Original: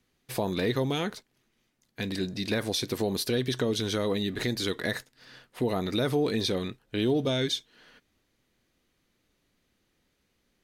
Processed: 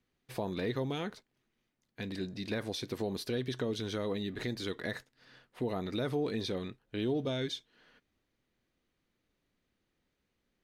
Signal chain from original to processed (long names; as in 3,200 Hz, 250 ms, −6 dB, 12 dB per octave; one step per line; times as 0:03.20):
high-shelf EQ 5,300 Hz −9 dB
level −6.5 dB